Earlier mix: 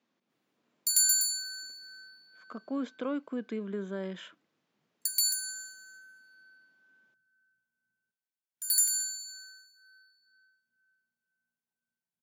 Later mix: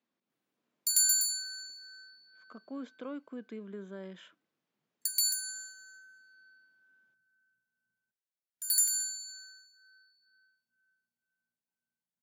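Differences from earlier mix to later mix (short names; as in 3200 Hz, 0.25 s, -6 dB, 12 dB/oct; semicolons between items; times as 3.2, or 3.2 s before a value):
speech -7.5 dB; background: send -10.0 dB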